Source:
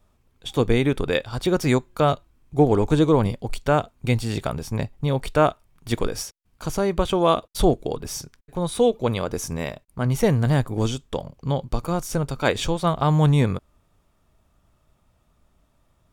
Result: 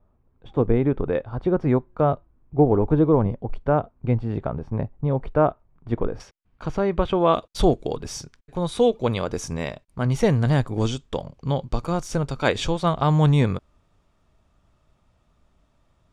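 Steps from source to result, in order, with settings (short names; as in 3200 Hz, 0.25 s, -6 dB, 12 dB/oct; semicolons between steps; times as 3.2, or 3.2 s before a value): LPF 1100 Hz 12 dB/oct, from 6.2 s 2600 Hz, from 7.34 s 6900 Hz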